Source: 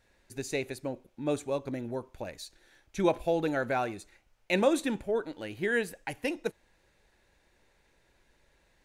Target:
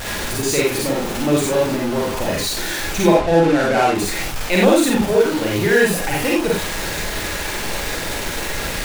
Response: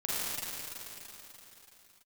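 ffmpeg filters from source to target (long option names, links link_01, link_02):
-filter_complex "[0:a]aeval=exprs='val(0)+0.5*0.0376*sgn(val(0))':channel_layout=same,asettb=1/sr,asplit=3[link_01][link_02][link_03];[link_01]atrim=end=3.094[link_04];[link_02]atrim=start=3.09:end=3.95,asetpts=PTS-STARTPTS,afade=type=in:duration=0.004:curve=qsin,afade=type=out:start_time=0.856:duration=0.004:curve=qsin,adynamicsmooth=sensitivity=6:basefreq=960[link_05];[link_03]atrim=start=3.946[link_06];[link_04][link_05]acrossfade=duration=0.004:curve1=hsin:curve2=qsin[link_07];[link_07][link_06]acrossfade=duration=0.004:curve1=qsin:curve2=hsin[link_08];[1:a]atrim=start_sample=2205,atrim=end_sample=4410[link_09];[link_08][link_09]afir=irnorm=-1:irlink=0,volume=8dB"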